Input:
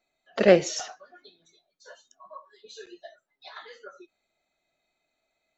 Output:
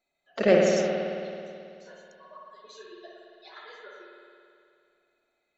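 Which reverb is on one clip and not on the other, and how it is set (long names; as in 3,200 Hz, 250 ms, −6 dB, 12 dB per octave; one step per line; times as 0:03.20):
spring reverb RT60 2.5 s, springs 54 ms, chirp 70 ms, DRR −2 dB
level −4.5 dB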